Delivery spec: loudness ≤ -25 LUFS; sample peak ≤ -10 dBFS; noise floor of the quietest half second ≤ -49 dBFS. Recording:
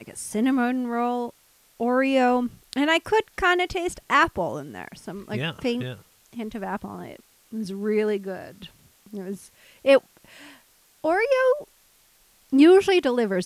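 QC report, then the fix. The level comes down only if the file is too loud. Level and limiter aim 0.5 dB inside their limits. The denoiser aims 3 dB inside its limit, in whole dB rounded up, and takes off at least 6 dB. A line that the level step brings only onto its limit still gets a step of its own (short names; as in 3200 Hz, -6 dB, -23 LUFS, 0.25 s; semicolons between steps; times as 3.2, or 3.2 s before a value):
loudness -23.0 LUFS: fail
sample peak -5.5 dBFS: fail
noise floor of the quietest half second -59 dBFS: OK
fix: gain -2.5 dB; limiter -10.5 dBFS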